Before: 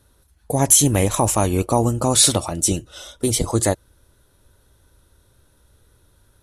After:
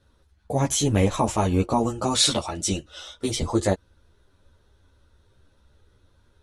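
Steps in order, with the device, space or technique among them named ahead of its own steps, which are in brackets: 1.79–3.35 tilt shelf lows -3.5 dB, about 770 Hz; string-machine ensemble chorus (ensemble effect; LPF 5100 Hz 12 dB/oct)

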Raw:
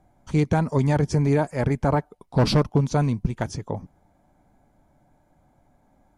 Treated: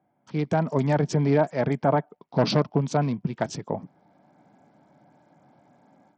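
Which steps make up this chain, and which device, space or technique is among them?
dynamic EQ 660 Hz, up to +7 dB, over -42 dBFS, Q 5.7; Bluetooth headset (HPF 140 Hz 24 dB/oct; AGC gain up to 13 dB; downsampling 16000 Hz; gain -7.5 dB; SBC 64 kbps 44100 Hz)

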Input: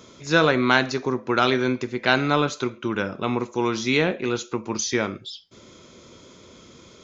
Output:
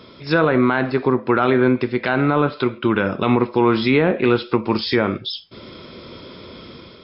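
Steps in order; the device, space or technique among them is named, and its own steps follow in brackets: treble ducked by the level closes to 1700 Hz, closed at -18 dBFS; low-bitrate web radio (AGC gain up to 5.5 dB; limiter -10.5 dBFS, peak gain reduction 8.5 dB; gain +5 dB; MP3 40 kbps 12000 Hz)

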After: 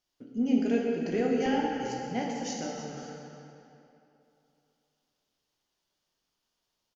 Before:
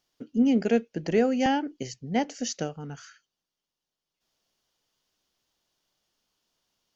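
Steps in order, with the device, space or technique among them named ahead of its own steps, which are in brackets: cave (echo 0.317 s -15 dB; reverb RT60 2.9 s, pre-delay 3 ms, DRR -2.5 dB); gain -8 dB

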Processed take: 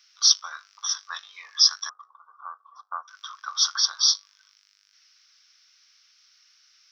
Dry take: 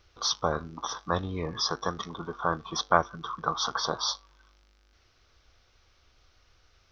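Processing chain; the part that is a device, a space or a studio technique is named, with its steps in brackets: 1.89–3.08 elliptic band-pass 470–1200 Hz, stop band 40 dB; headphones lying on a table (HPF 1500 Hz 24 dB/oct; bell 5400 Hz +11.5 dB 0.49 oct); gain +3 dB

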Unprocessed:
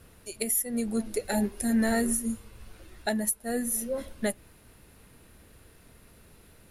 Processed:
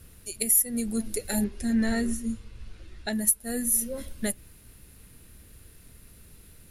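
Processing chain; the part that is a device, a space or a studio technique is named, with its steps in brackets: smiley-face EQ (low shelf 110 Hz +7 dB; bell 770 Hz -6.5 dB 1.7 oct; high shelf 5700 Hz +7.5 dB); 1.44–3.13 LPF 5100 Hz 12 dB/oct

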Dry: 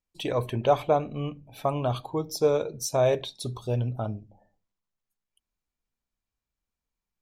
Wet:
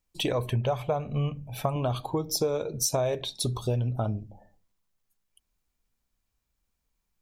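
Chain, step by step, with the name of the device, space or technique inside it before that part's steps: 0.51–1.76 thirty-one-band EQ 125 Hz +8 dB, 315 Hz -11 dB, 4000 Hz -4 dB; ASMR close-microphone chain (low shelf 110 Hz +5 dB; compressor 6:1, threshold -30 dBFS, peak gain reduction 14 dB; high shelf 6200 Hz +4 dB); gain +5.5 dB

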